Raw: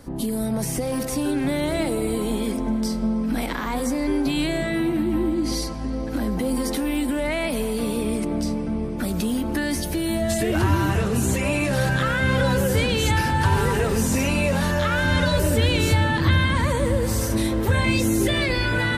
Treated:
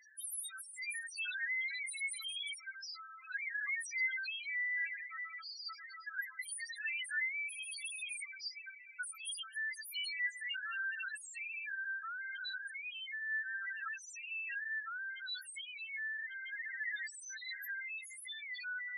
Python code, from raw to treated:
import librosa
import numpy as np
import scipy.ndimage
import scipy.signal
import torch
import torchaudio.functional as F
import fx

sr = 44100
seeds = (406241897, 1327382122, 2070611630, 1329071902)

y = scipy.signal.sosfilt(scipy.signal.butter(6, 1500.0, 'highpass', fs=sr, output='sos'), x)
y = fx.over_compress(y, sr, threshold_db=-38.0, ratio=-1.0)
y = fx.spec_topn(y, sr, count=2)
y = F.gain(torch.from_numpy(y), 4.5).numpy()